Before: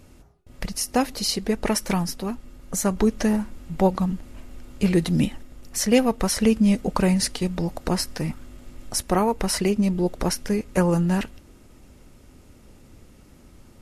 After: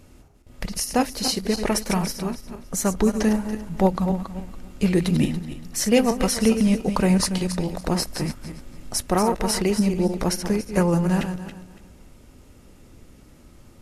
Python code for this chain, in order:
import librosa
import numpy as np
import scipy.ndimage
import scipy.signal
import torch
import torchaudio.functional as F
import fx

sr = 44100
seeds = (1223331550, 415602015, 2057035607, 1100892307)

y = fx.reverse_delay_fb(x, sr, ms=142, feedback_pct=47, wet_db=-8.0)